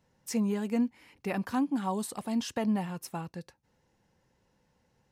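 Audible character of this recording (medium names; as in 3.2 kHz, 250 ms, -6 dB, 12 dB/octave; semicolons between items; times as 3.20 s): noise floor -73 dBFS; spectral tilt -5.5 dB/octave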